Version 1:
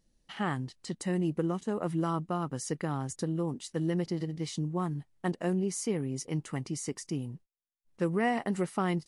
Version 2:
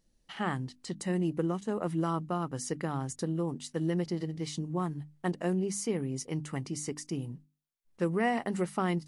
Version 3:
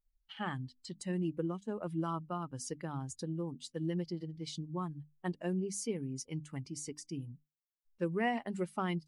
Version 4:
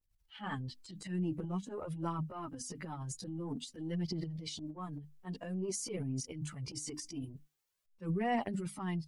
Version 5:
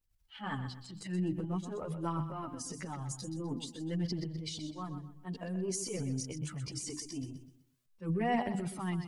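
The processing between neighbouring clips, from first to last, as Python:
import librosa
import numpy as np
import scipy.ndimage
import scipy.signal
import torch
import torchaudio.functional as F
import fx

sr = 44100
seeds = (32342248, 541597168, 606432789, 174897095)

y1 = fx.hum_notches(x, sr, base_hz=50, count=6)
y2 = fx.bin_expand(y1, sr, power=1.5)
y2 = fx.dynamic_eq(y2, sr, hz=3500.0, q=1.1, threshold_db=-54.0, ratio=4.0, max_db=4)
y2 = y2 * librosa.db_to_amplitude(-3.0)
y3 = fx.transient(y2, sr, attack_db=-9, sustain_db=11)
y3 = fx.rider(y3, sr, range_db=10, speed_s=2.0)
y3 = fx.chorus_voices(y3, sr, voices=2, hz=0.24, base_ms=13, depth_ms=3.2, mix_pct=70)
y4 = fx.echo_feedback(y3, sr, ms=126, feedback_pct=32, wet_db=-10)
y4 = y4 * librosa.db_to_amplitude(1.5)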